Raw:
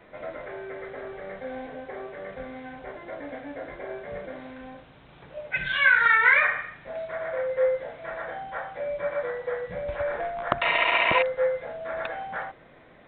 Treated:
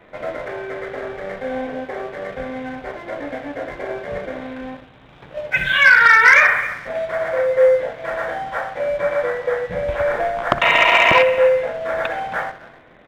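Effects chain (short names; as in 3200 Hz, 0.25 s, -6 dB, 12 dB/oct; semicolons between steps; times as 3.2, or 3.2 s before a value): outdoor echo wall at 46 m, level -18 dB; spring tank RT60 1.3 s, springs 58 ms, chirp 75 ms, DRR 12.5 dB; sample leveller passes 1; gain +5.5 dB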